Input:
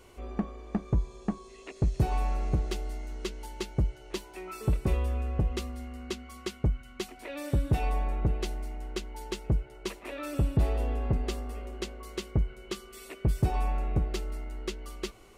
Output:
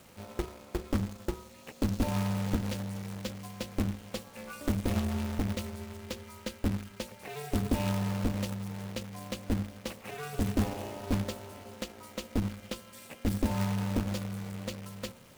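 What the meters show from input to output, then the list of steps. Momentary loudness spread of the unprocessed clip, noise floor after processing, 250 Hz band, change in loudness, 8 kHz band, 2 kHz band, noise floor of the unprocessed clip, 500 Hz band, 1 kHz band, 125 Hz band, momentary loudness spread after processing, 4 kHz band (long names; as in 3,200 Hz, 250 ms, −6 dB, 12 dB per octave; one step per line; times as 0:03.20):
11 LU, −53 dBFS, +3.5 dB, −2.0 dB, +2.0 dB, +1.0 dB, −51 dBFS, −1.5 dB, −2.5 dB, −3.0 dB, 12 LU, +0.5 dB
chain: hum removal 54.73 Hz, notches 7
log-companded quantiser 4 bits
ring modulation 150 Hz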